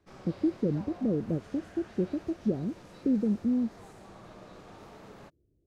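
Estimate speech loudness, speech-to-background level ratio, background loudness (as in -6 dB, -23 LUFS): -31.0 LUFS, 19.5 dB, -50.5 LUFS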